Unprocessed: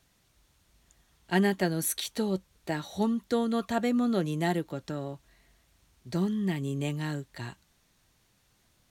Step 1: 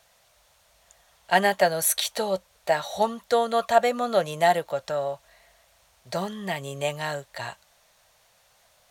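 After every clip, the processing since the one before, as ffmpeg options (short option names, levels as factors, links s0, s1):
-af "lowshelf=f=430:t=q:w=3:g=-11,volume=2.37"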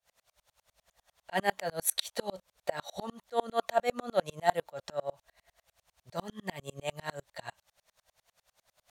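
-af "aeval=exprs='val(0)*pow(10,-34*if(lt(mod(-10*n/s,1),2*abs(-10)/1000),1-mod(-10*n/s,1)/(2*abs(-10)/1000),(mod(-10*n/s,1)-2*abs(-10)/1000)/(1-2*abs(-10)/1000))/20)':c=same"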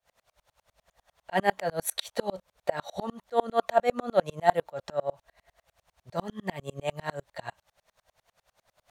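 -af "highshelf=f=2600:g=-8.5,volume=1.88"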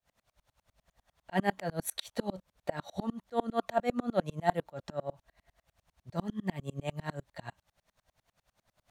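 -af "lowshelf=f=360:t=q:w=1.5:g=6.5,volume=0.531"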